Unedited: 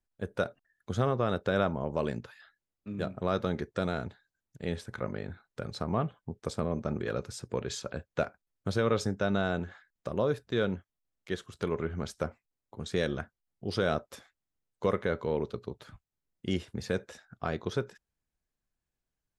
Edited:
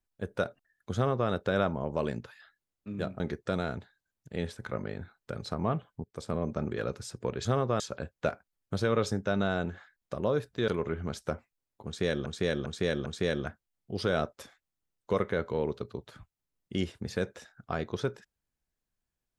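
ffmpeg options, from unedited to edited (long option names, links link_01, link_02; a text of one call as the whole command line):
ffmpeg -i in.wav -filter_complex "[0:a]asplit=9[link_01][link_02][link_03][link_04][link_05][link_06][link_07][link_08][link_09];[link_01]atrim=end=3.202[link_10];[link_02]atrim=start=3.488:end=6.33,asetpts=PTS-STARTPTS,afade=type=out:start_time=2.838:duration=0.004:curve=hsin:silence=0.125893[link_11];[link_03]atrim=start=6.33:end=7.742,asetpts=PTS-STARTPTS,afade=type=in:duration=0.32:silence=0.125893[link_12];[link_04]atrim=start=0.948:end=1.302[link_13];[link_05]atrim=start=7.738:end=10.622[link_14];[link_06]atrim=start=11.608:end=13.192[link_15];[link_07]atrim=start=12.788:end=13.192[link_16];[link_08]atrim=start=12.788:end=13.192[link_17];[link_09]atrim=start=12.788[link_18];[link_11][link_12]concat=n=2:v=0:a=1[link_19];[link_10][link_19]acrossfade=duration=0.004:curve1=hsin:curve2=hsin[link_20];[link_20][link_13]acrossfade=duration=0.004:curve1=hsin:curve2=hsin[link_21];[link_21][link_14]acrossfade=duration=0.004:curve1=hsin:curve2=hsin[link_22];[link_22][link_15]acrossfade=duration=0.004:curve1=hsin:curve2=hsin[link_23];[link_23][link_16]acrossfade=duration=0.004:curve1=hsin:curve2=hsin[link_24];[link_24][link_17]acrossfade=duration=0.004:curve1=hsin:curve2=hsin[link_25];[link_25][link_18]acrossfade=duration=0.004:curve1=hsin:curve2=hsin" out.wav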